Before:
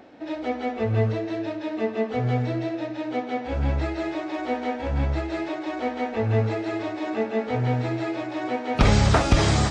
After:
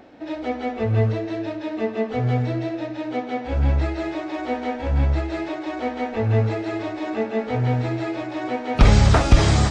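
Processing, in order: bass shelf 64 Hz +10 dB; trim +1 dB

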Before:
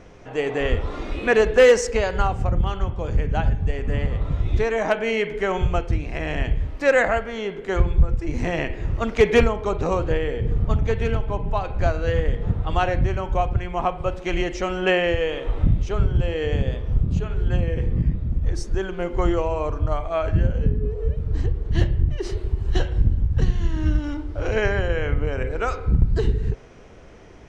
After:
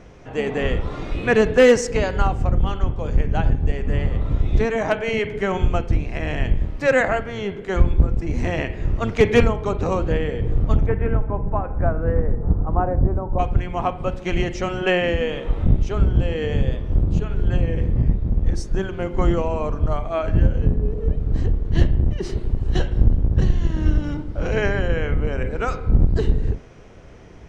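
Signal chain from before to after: octave divider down 1 oct, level 0 dB; 10.85–13.38 s: low-pass 2.1 kHz -> 1 kHz 24 dB/octave

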